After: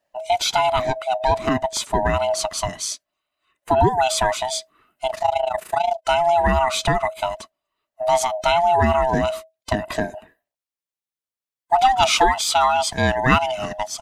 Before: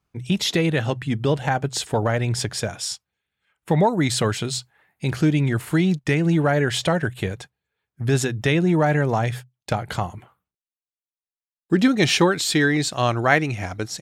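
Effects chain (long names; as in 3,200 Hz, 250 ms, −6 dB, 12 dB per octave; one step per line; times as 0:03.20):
neighbouring bands swapped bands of 500 Hz
0:05.07–0:06.05: amplitude modulation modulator 27 Hz, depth 75%
level +1.5 dB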